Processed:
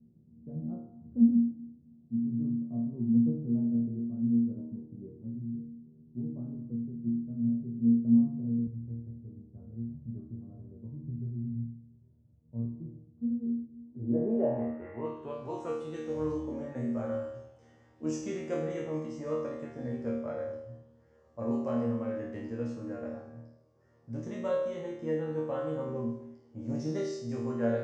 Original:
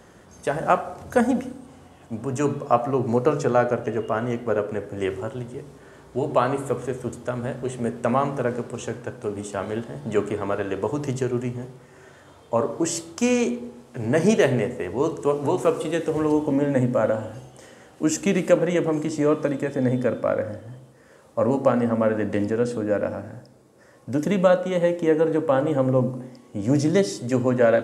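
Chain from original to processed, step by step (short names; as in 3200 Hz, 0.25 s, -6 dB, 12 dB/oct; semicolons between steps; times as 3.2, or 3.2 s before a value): high shelf 2300 Hz -8 dB; resonator bank D#2 fifth, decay 0.75 s; low-pass sweep 170 Hz -> 5900 Hz, 13.73–15.57; bell 240 Hz +10.5 dB 1.4 oct, from 8.67 s 73 Hz; mismatched tape noise reduction decoder only; gain +1.5 dB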